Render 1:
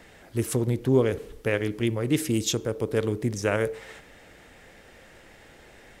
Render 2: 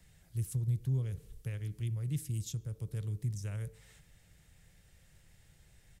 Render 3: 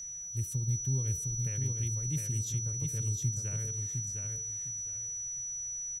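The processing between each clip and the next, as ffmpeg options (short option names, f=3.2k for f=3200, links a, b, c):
-filter_complex "[0:a]firequalizer=gain_entry='entry(160,0);entry(230,-18);entry(450,-20);entry(3900,-9);entry(8700,-2)':delay=0.05:min_phase=1,acrossover=split=230[a][b];[b]acompressor=threshold=-52dB:ratio=1.5[c];[a][c]amix=inputs=2:normalize=0,volume=-3.5dB"
-af "aeval=exprs='val(0)+0.0112*sin(2*PI*5900*n/s)':c=same,aecho=1:1:708|1416|2124:0.631|0.151|0.0363"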